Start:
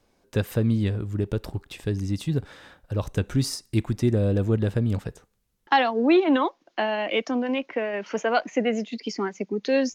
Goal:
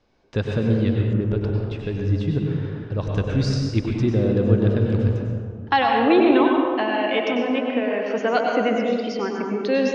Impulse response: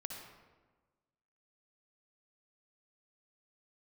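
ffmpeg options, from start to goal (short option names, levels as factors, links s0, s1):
-filter_complex "[0:a]lowpass=f=5400:w=0.5412,lowpass=f=5400:w=1.3066[s0];[1:a]atrim=start_sample=2205,asetrate=25578,aresample=44100[s1];[s0][s1]afir=irnorm=-1:irlink=0,asettb=1/sr,asplit=3[s2][s3][s4];[s2]atrim=end=1.134[s5];[s3]atrim=start=1.13:end=3.01,asetpts=PTS-STARTPTS,afade=t=in:d=0.004:c=qsin,afade=t=out:st=1.876:d=0.004:c=qsin,adynamicequalizer=threshold=0.00224:dfrequency=3400:dqfactor=0.7:tfrequency=3400:tqfactor=0.7:attack=5:release=100:ratio=0.375:range=3.5:mode=cutabove:tftype=highshelf[s6];[s4]atrim=start=3.006[s7];[s5][s6]acrossfade=d=0.004:c1=hsin:c2=qsin[s8];[s8][s7]acrossfade=d=0.004:c1=qsin:c2=hsin,volume=1.26"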